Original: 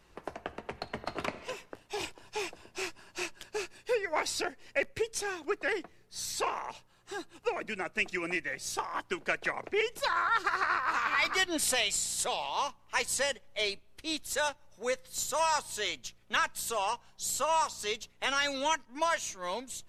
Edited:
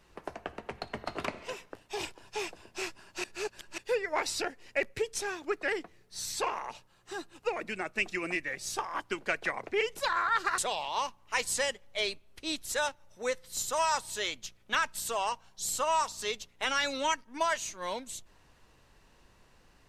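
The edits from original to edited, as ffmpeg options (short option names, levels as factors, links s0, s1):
-filter_complex "[0:a]asplit=4[s0][s1][s2][s3];[s0]atrim=end=3.242[s4];[s1]atrim=start=3.238:end=3.782,asetpts=PTS-STARTPTS,areverse[s5];[s2]atrim=start=3.778:end=10.582[s6];[s3]atrim=start=12.188[s7];[s4][s5]acrossfade=d=0.004:c1=hsin:c2=hsin[s8];[s8][s6]acrossfade=d=0.004:c1=hsin:c2=hsin[s9];[s9][s7]acrossfade=d=0.004:c1=hsin:c2=hsin"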